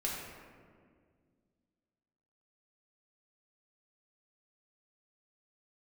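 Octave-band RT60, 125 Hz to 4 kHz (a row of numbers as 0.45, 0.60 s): 2.7, 2.7, 2.2, 1.7, 1.5, 0.95 s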